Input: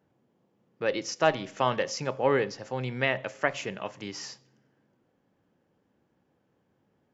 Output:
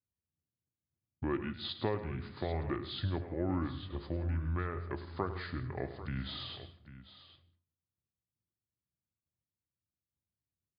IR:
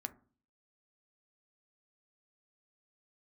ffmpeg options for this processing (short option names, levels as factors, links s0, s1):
-af "agate=range=0.0224:threshold=0.00251:ratio=3:detection=peak,equalizer=f=120:w=0.75:g=13,acompressor=threshold=0.0178:ratio=2.5,tremolo=f=3.4:d=0.32,asetrate=29150,aresample=44100,aecho=1:1:103|166|795:0.224|0.133|0.188"